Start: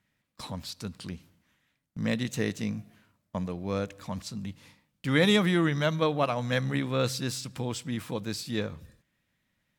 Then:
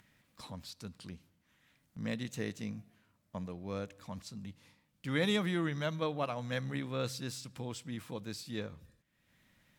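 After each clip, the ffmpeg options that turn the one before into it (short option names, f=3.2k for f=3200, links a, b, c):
-af "acompressor=mode=upward:threshold=-45dB:ratio=2.5,volume=-8.5dB"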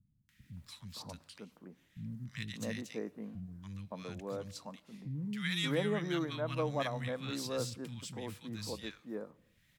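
-filter_complex "[0:a]acrossover=split=200|1400[a][b][c];[c]adelay=290[d];[b]adelay=570[e];[a][e][d]amix=inputs=3:normalize=0,volume=1dB"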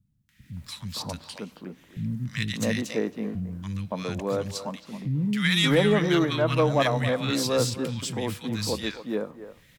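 -filter_complex "[0:a]asplit=2[a][b];[b]adelay=270,highpass=300,lowpass=3.4k,asoftclip=type=hard:threshold=-29dB,volume=-12dB[c];[a][c]amix=inputs=2:normalize=0,dynaudnorm=f=330:g=3:m=10dB,asoftclip=type=tanh:threshold=-12.5dB,volume=3dB"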